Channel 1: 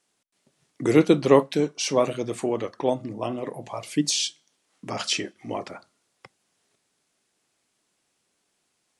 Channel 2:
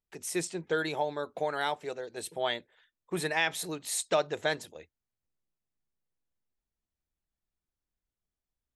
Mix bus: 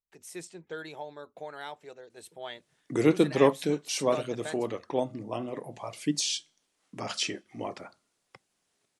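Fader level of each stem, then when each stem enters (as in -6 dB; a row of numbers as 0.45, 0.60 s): -5.0, -9.5 dB; 2.10, 0.00 s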